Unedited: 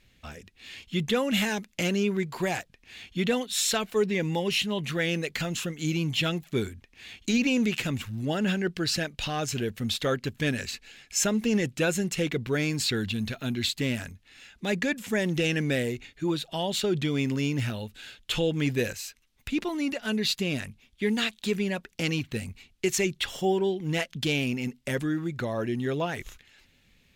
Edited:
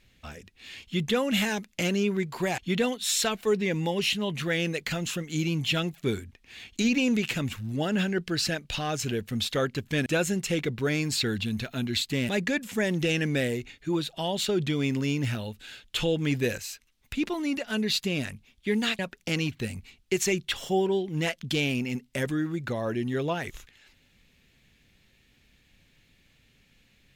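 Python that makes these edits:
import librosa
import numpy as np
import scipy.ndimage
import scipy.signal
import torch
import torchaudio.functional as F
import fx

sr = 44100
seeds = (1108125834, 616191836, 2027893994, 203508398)

y = fx.edit(x, sr, fx.cut(start_s=2.58, length_s=0.49),
    fx.cut(start_s=10.55, length_s=1.19),
    fx.cut(start_s=13.97, length_s=0.67),
    fx.cut(start_s=21.34, length_s=0.37), tone=tone)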